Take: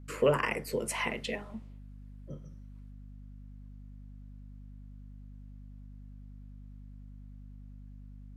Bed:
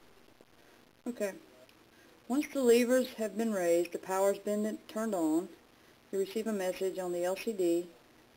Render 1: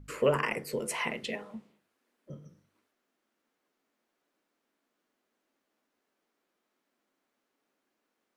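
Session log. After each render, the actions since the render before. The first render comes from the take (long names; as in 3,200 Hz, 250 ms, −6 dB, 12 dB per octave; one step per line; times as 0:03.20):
hum removal 50 Hz, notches 10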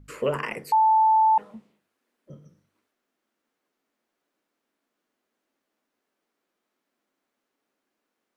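0:00.72–0:01.38: beep over 878 Hz −15 dBFS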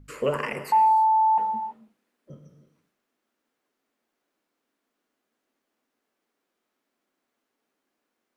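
reverb whose tail is shaped and stops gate 360 ms flat, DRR 9 dB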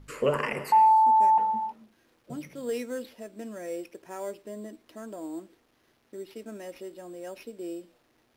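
mix in bed −7 dB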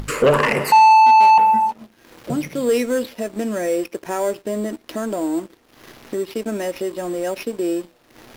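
in parallel at +0.5 dB: upward compression, threshold −30 dBFS
on the sum: leveller curve on the samples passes 2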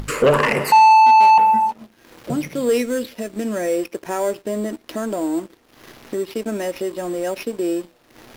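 0:02.81–0:03.45: dynamic equaliser 840 Hz, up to −7 dB, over −36 dBFS, Q 1.2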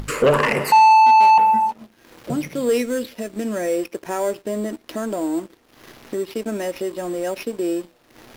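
level −1 dB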